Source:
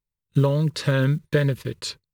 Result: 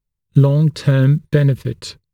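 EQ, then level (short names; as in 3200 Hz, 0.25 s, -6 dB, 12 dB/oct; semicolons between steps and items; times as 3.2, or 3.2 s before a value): low shelf 350 Hz +10 dB; 0.0 dB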